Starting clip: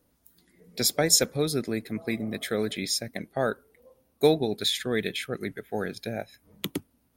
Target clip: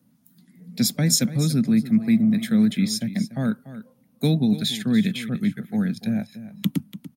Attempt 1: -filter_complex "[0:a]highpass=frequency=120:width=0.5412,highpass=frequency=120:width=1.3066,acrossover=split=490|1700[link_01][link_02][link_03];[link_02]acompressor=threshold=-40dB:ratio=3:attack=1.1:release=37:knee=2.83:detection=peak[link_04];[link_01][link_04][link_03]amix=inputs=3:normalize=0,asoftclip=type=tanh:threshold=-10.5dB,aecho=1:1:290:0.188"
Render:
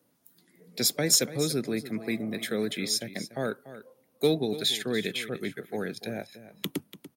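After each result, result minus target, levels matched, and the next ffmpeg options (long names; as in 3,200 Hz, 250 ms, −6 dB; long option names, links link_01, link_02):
soft clipping: distortion +19 dB; 250 Hz band −6.5 dB
-filter_complex "[0:a]highpass=frequency=120:width=0.5412,highpass=frequency=120:width=1.3066,acrossover=split=490|1700[link_01][link_02][link_03];[link_02]acompressor=threshold=-40dB:ratio=3:attack=1.1:release=37:knee=2.83:detection=peak[link_04];[link_01][link_04][link_03]amix=inputs=3:normalize=0,asoftclip=type=tanh:threshold=-0.5dB,aecho=1:1:290:0.188"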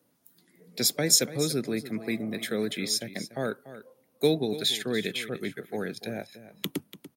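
250 Hz band −6.5 dB
-filter_complex "[0:a]highpass=frequency=120:width=0.5412,highpass=frequency=120:width=1.3066,lowshelf=frequency=290:width_type=q:width=3:gain=9.5,acrossover=split=490|1700[link_01][link_02][link_03];[link_02]acompressor=threshold=-40dB:ratio=3:attack=1.1:release=37:knee=2.83:detection=peak[link_04];[link_01][link_04][link_03]amix=inputs=3:normalize=0,asoftclip=type=tanh:threshold=-0.5dB,aecho=1:1:290:0.188"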